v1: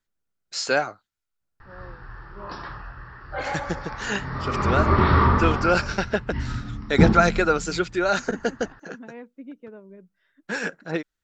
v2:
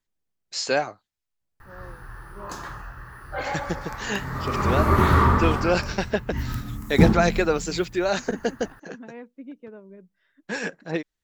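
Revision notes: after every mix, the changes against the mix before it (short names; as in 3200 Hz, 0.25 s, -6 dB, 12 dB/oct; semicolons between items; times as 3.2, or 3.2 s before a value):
first voice: add bell 1400 Hz -10 dB 0.23 oct; background: remove brick-wall FIR low-pass 5700 Hz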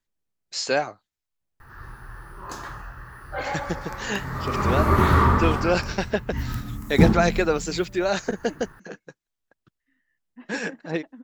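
second voice: entry +2.20 s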